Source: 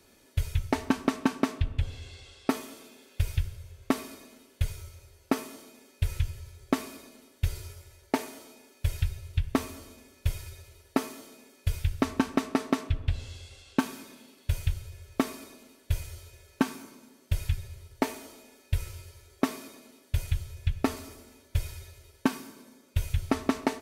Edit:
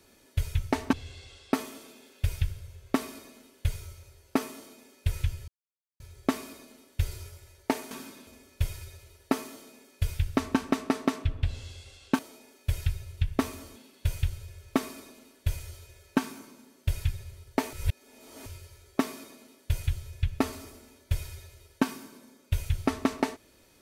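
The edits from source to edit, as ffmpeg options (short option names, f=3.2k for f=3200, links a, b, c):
-filter_complex "[0:a]asplit=9[a][b][c][d][e][f][g][h][i];[a]atrim=end=0.932[j];[b]atrim=start=1.888:end=6.44,asetpts=PTS-STARTPTS,afade=t=out:st=4.548:d=0.004:c=hsin,apad=pad_dur=0.52[k];[c]atrim=start=6.44:end=8.352,asetpts=PTS-STARTPTS,afade=t=in:d=0.004:c=hsin[l];[d]atrim=start=13.838:end=14.202[m];[e]atrim=start=9.918:end=13.842[n];[f]atrim=start=8.348:end=9.922[o];[g]atrim=start=14.198:end=18.172[p];[h]atrim=start=18.168:end=18.902,asetpts=PTS-STARTPTS,areverse[q];[i]atrim=start=18.898[r];[k][l]concat=n=2:v=0:a=1[s];[j][s]acrossfade=d=0.004:c1=hsin:c2=hsin[t];[t][m]acrossfade=d=0.004:c1=hsin:c2=hsin[u];[u][n]acrossfade=d=0.004:c1=hsin:c2=hsin[v];[v][o]acrossfade=d=0.004:c1=hsin:c2=hsin[w];[w][p]acrossfade=d=0.004:c1=hsin:c2=hsin[x];[x][q]acrossfade=d=0.004:c1=hsin:c2=hsin[y];[y][r]acrossfade=d=0.004:c1=hsin:c2=hsin"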